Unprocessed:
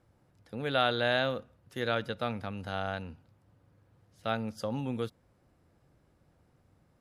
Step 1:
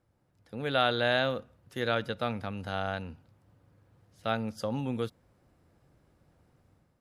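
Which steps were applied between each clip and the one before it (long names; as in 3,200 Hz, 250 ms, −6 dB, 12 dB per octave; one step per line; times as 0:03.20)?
automatic gain control gain up to 7.5 dB
level −6 dB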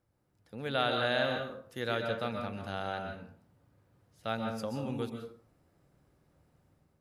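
high-shelf EQ 8,000 Hz +4.5 dB
dense smooth reverb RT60 0.54 s, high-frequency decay 0.6×, pre-delay 115 ms, DRR 3.5 dB
level −4.5 dB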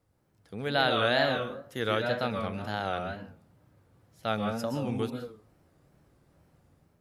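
tape wow and flutter 130 cents
level +4.5 dB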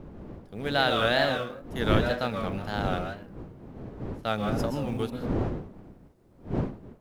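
mu-law and A-law mismatch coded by A
wind on the microphone 290 Hz −36 dBFS
level +2 dB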